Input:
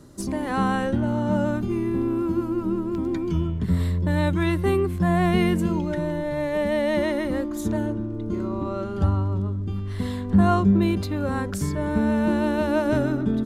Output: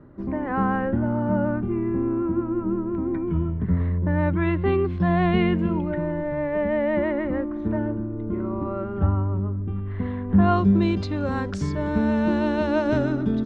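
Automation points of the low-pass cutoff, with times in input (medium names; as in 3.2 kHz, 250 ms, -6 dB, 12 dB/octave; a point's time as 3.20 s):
low-pass 24 dB/octave
4.18 s 2 kHz
5.00 s 4.3 kHz
6.09 s 2.2 kHz
10.26 s 2.2 kHz
10.70 s 5.9 kHz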